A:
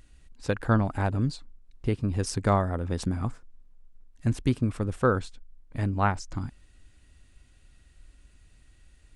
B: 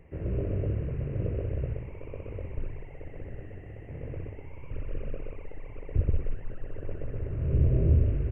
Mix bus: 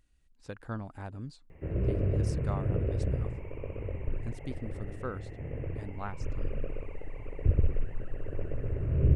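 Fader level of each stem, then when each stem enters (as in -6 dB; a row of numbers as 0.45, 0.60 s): -14.5, +1.0 dB; 0.00, 1.50 s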